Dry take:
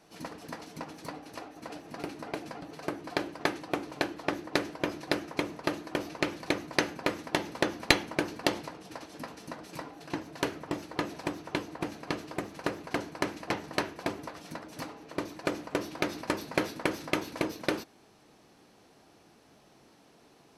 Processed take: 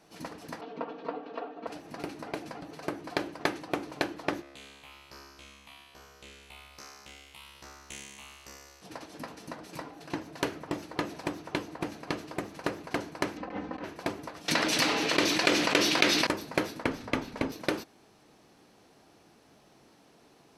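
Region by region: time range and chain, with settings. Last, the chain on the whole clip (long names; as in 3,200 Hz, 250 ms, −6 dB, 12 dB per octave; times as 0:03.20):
0:00.61–0:01.67: loudspeaker in its box 240–3,300 Hz, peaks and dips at 330 Hz +6 dB, 480 Hz +7 dB, 760 Hz +5 dB, 1,200 Hz +4 dB, 2,100 Hz −7 dB + comb filter 4.4 ms, depth 73%
0:04.41–0:08.81: ceiling on every frequency bin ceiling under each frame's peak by 21 dB + all-pass phaser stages 6, 1.2 Hz, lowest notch 380–3,800 Hz + tuned comb filter 69 Hz, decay 1.5 s, mix 100%
0:13.37–0:13.84: comb filter 3.9 ms, depth 84% + compressor whose output falls as the input rises −35 dBFS + head-to-tape spacing loss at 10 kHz 30 dB
0:14.48–0:16.27: meter weighting curve D + envelope flattener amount 70%
0:16.84–0:17.52: low-pass filter 3,800 Hz 6 dB per octave + frequency shifter −48 Hz
whole clip: no processing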